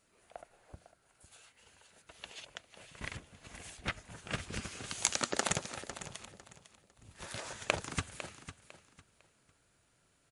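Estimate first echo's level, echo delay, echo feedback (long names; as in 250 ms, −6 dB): −13.0 dB, 502 ms, 26%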